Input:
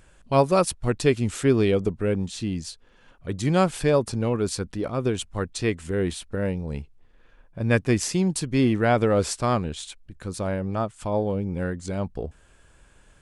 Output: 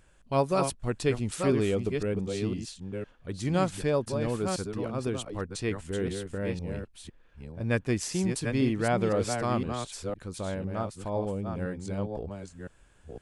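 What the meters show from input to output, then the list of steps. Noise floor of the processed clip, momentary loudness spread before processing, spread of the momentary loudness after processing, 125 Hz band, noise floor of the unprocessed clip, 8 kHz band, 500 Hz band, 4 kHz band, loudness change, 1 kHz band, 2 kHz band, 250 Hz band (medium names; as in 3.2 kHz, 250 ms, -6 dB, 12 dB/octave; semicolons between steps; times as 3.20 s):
-59 dBFS, 12 LU, 12 LU, -5.5 dB, -56 dBFS, -5.5 dB, -5.5 dB, -5.5 dB, -6.0 dB, -5.5 dB, -5.5 dB, -5.5 dB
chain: chunks repeated in reverse 507 ms, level -5.5 dB; trim -6.5 dB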